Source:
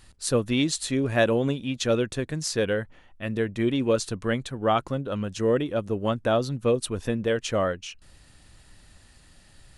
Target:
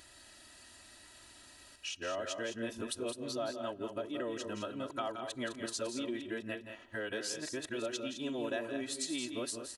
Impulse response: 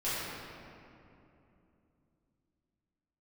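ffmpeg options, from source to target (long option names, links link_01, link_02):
-filter_complex "[0:a]areverse,highpass=frequency=470:poles=1,equalizer=frequency=1100:width=6.4:gain=-2.5,bandreject=frequency=2200:width=13,aecho=1:1:3.1:0.62,acompressor=threshold=-38dB:ratio=4,aecho=1:1:172|207:0.355|0.355,asplit=2[link_01][link_02];[1:a]atrim=start_sample=2205,asetrate=52920,aresample=44100[link_03];[link_02][link_03]afir=irnorm=-1:irlink=0,volume=-29dB[link_04];[link_01][link_04]amix=inputs=2:normalize=0"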